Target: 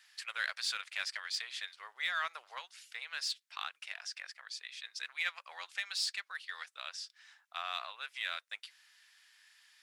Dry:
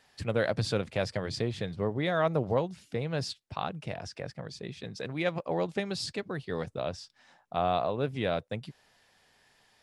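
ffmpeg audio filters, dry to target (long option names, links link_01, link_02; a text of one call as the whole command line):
ffmpeg -i in.wav -filter_complex "[0:a]highpass=frequency=1400:width=0.5412,highpass=frequency=1400:width=1.3066,asplit=2[link_01][link_02];[link_02]volume=36dB,asoftclip=hard,volume=-36dB,volume=-8.5dB[link_03];[link_01][link_03]amix=inputs=2:normalize=0" out.wav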